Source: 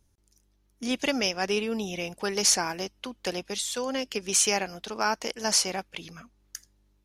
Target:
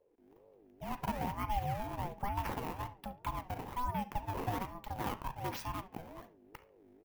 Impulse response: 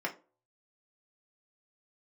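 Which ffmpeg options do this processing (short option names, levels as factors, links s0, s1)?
-filter_complex "[0:a]aemphasis=mode=reproduction:type=75kf,dynaudnorm=f=130:g=3:m=3.76,acrusher=samples=16:mix=1:aa=0.000001:lfo=1:lforange=25.6:lforate=1.2,acompressor=threshold=0.00251:ratio=1.5,equalizer=f=250:t=o:w=1:g=-8,equalizer=f=500:t=o:w=1:g=7,equalizer=f=1000:t=o:w=1:g=-10,equalizer=f=4000:t=o:w=1:g=-9,equalizer=f=8000:t=o:w=1:g=-10,asplit=2[s0][s1];[s1]adelay=70,lowpass=f=4300:p=1,volume=0.141,asplit=2[s2][s3];[s3]adelay=70,lowpass=f=4300:p=1,volume=0.29,asplit=2[s4][s5];[s5]adelay=70,lowpass=f=4300:p=1,volume=0.29[s6];[s0][s2][s4][s6]amix=inputs=4:normalize=0,asplit=2[s7][s8];[1:a]atrim=start_sample=2205,adelay=38[s9];[s8][s9]afir=irnorm=-1:irlink=0,volume=0.133[s10];[s7][s10]amix=inputs=2:normalize=0,aeval=exprs='val(0)*sin(2*PI*400*n/s+400*0.25/2.1*sin(2*PI*2.1*n/s))':c=same,volume=0.841"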